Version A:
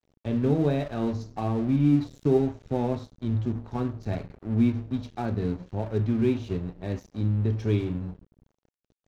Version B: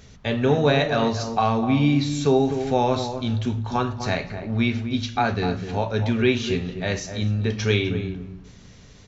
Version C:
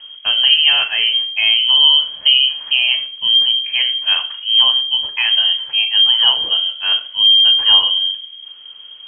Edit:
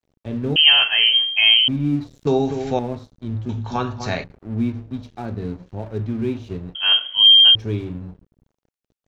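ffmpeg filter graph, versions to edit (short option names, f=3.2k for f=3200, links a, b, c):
-filter_complex "[2:a]asplit=2[a][b];[1:a]asplit=2[c][d];[0:a]asplit=5[e][f][g][h][i];[e]atrim=end=0.562[j];[a]atrim=start=0.558:end=1.682[k];[f]atrim=start=1.678:end=2.272[l];[c]atrim=start=2.268:end=2.792[m];[g]atrim=start=2.788:end=3.492[n];[d]atrim=start=3.488:end=4.242[o];[h]atrim=start=4.238:end=6.752[p];[b]atrim=start=6.748:end=7.552[q];[i]atrim=start=7.548[r];[j][k]acrossfade=d=0.004:c1=hsin:c2=hsin[s];[s][l]acrossfade=d=0.004:c1=hsin:c2=hsin[t];[t][m]acrossfade=d=0.004:c1=hsin:c2=hsin[u];[u][n]acrossfade=d=0.004:c1=hsin:c2=hsin[v];[v][o]acrossfade=d=0.004:c1=hsin:c2=hsin[w];[w][p]acrossfade=d=0.004:c1=hsin:c2=hsin[x];[x][q]acrossfade=d=0.004:c1=hsin:c2=hsin[y];[y][r]acrossfade=d=0.004:c1=hsin:c2=hsin"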